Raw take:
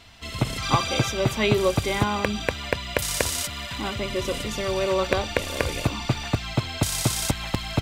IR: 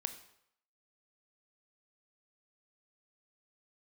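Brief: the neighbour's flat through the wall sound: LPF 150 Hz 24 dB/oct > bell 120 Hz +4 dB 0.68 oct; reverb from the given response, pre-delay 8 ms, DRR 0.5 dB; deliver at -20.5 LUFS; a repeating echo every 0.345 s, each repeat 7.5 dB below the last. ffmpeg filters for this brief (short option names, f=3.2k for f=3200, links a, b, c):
-filter_complex "[0:a]aecho=1:1:345|690|1035|1380|1725:0.422|0.177|0.0744|0.0312|0.0131,asplit=2[a][b];[1:a]atrim=start_sample=2205,adelay=8[c];[b][c]afir=irnorm=-1:irlink=0,volume=0dB[d];[a][d]amix=inputs=2:normalize=0,lowpass=f=150:w=0.5412,lowpass=f=150:w=1.3066,equalizer=f=120:t=o:w=0.68:g=4,volume=5.5dB"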